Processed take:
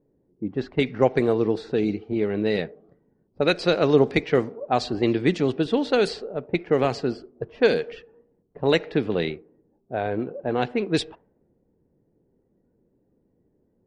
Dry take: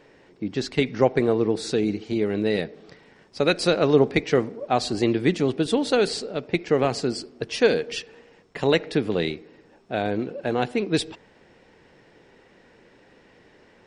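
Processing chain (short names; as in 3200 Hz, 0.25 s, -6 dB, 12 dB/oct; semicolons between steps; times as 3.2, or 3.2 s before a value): spectral noise reduction 7 dB; low-pass opened by the level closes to 310 Hz, open at -15.5 dBFS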